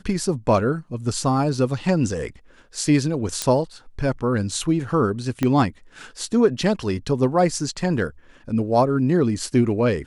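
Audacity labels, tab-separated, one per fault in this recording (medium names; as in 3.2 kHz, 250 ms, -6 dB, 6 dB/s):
3.420000	3.420000	pop -7 dBFS
5.430000	5.430000	pop -9 dBFS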